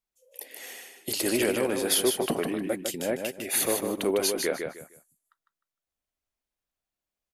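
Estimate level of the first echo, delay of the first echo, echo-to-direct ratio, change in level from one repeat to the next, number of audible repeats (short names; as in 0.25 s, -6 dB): -5.5 dB, 0.153 s, -5.0 dB, -12.5 dB, 3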